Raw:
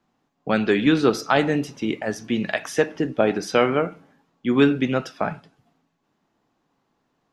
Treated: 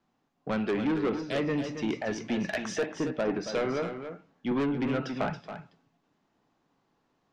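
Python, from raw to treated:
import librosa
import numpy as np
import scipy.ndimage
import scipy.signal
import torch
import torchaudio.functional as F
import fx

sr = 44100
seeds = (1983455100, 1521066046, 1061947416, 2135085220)

p1 = fx.ellip_bandstop(x, sr, low_hz=600.0, high_hz=1800.0, order=3, stop_db=40, at=(1.2, 1.64))
p2 = fx.env_lowpass_down(p1, sr, base_hz=1700.0, full_db=-15.0)
p3 = scipy.signal.sosfilt(scipy.signal.butter(4, 7500.0, 'lowpass', fs=sr, output='sos'), p2)
p4 = fx.rider(p3, sr, range_db=3, speed_s=0.5)
p5 = p3 + (p4 * librosa.db_to_amplitude(-3.0))
p6 = 10.0 ** (-15.0 / 20.0) * np.tanh(p5 / 10.0 ** (-15.0 / 20.0))
p7 = p6 + fx.echo_single(p6, sr, ms=276, db=-9.0, dry=0)
p8 = fx.band_squash(p7, sr, depth_pct=70, at=(4.51, 5.3))
y = p8 * librosa.db_to_amplitude(-8.5)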